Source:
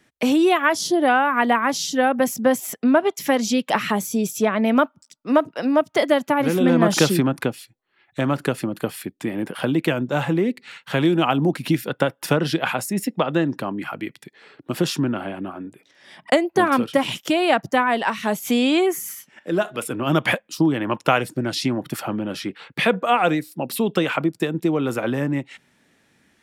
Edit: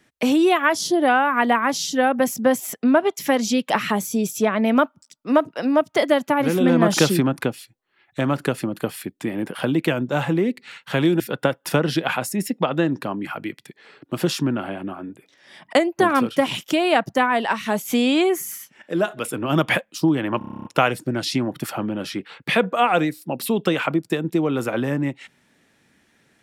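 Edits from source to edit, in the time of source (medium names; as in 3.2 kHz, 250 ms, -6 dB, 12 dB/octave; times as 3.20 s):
11.20–11.77 s: delete
20.95 s: stutter 0.03 s, 10 plays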